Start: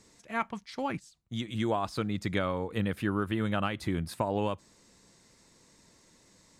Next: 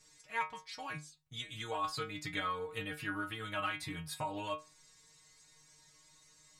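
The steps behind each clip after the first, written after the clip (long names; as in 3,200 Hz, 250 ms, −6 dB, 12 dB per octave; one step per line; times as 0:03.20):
parametric band 300 Hz −13.5 dB 2.6 octaves
stiff-string resonator 150 Hz, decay 0.26 s, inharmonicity 0.002
level +10.5 dB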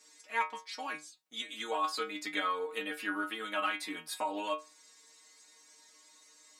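elliptic high-pass filter 230 Hz, stop band 50 dB
level +4.5 dB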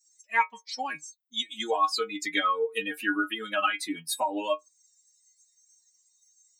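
spectral dynamics exaggerated over time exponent 2
in parallel at −2 dB: downward compressor, threshold −43 dBFS, peak gain reduction 14.5 dB
on the sum: level +8.5 dB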